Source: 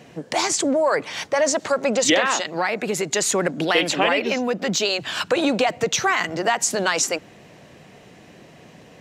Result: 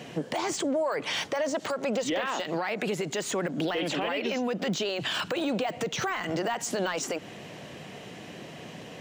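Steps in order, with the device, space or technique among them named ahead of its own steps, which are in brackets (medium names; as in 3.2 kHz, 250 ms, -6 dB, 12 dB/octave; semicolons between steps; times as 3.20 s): broadcast voice chain (high-pass 90 Hz; de-esser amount 80%; compression 5:1, threshold -26 dBFS, peak gain reduction 10 dB; peaking EQ 3.1 kHz +5 dB 0.32 oct; peak limiter -24.5 dBFS, peak gain reduction 9 dB); trim +3.5 dB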